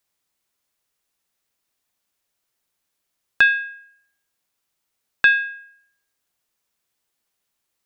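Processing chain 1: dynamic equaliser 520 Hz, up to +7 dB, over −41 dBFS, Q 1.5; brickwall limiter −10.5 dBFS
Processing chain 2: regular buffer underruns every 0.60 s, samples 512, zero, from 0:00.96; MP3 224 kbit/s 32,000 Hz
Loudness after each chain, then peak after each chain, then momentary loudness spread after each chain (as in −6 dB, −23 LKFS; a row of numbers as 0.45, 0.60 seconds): −21.0, −18.0 LKFS; −10.5, −3.5 dBFS; 14, 14 LU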